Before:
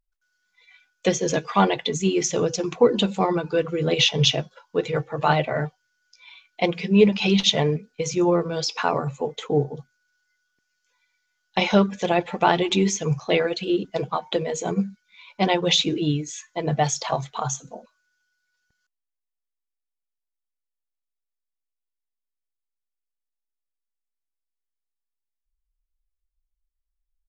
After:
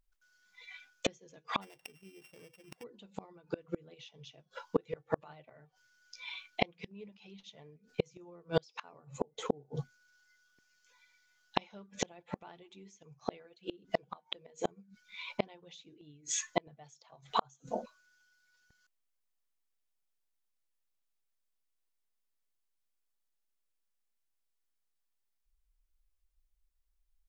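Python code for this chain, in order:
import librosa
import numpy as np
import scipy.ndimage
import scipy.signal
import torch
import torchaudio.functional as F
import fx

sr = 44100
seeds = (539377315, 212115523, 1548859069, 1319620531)

y = fx.sample_sort(x, sr, block=16, at=(1.61, 2.82), fade=0.02)
y = fx.peak_eq(y, sr, hz=2300.0, db=fx.line((9.0, -1.0), (9.44, -12.5)), octaves=2.8, at=(9.0, 9.44), fade=0.02)
y = fx.gate_flip(y, sr, shuts_db=-18.0, range_db=-37)
y = F.gain(torch.from_numpy(y), 3.0).numpy()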